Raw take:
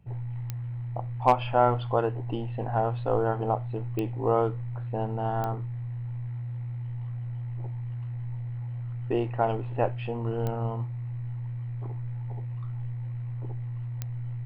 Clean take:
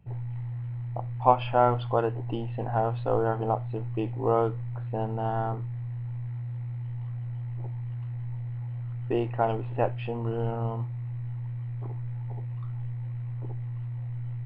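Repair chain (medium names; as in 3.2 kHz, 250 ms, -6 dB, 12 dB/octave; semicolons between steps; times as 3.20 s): clip repair -10 dBFS; de-click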